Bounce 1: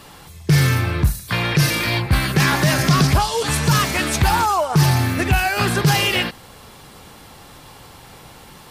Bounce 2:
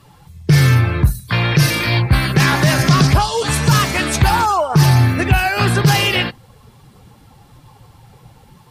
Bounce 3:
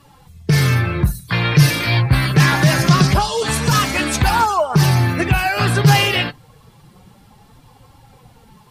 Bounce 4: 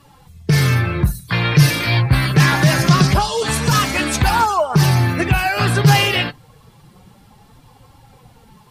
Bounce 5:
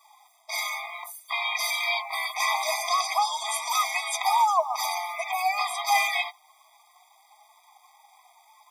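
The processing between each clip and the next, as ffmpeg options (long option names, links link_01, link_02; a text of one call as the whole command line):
ffmpeg -i in.wav -af "equalizer=frequency=120:width=6.6:gain=6,afftdn=noise_reduction=13:noise_floor=-35,volume=2.5dB" out.wav
ffmpeg -i in.wav -af "flanger=delay=3.5:depth=4:regen=44:speed=0.25:shape=triangular,volume=3dB" out.wav
ffmpeg -i in.wav -af anull out.wav
ffmpeg -i in.wav -af "acrusher=bits=7:mix=0:aa=0.5,afftfilt=real='re*eq(mod(floor(b*sr/1024/640),2),1)':imag='im*eq(mod(floor(b*sr/1024/640),2),1)':win_size=1024:overlap=0.75,volume=-4dB" out.wav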